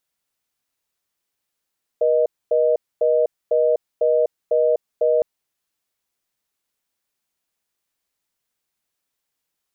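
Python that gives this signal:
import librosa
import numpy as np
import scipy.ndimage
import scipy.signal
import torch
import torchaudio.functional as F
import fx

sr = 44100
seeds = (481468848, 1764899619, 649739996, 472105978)

y = fx.call_progress(sr, length_s=3.21, kind='reorder tone', level_db=-17.0)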